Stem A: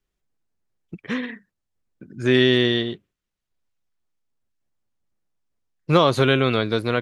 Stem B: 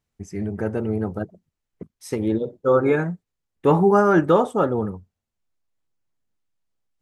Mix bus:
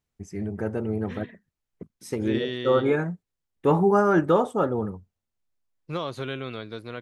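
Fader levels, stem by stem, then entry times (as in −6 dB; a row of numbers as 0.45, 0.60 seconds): −14.5, −3.5 decibels; 0.00, 0.00 seconds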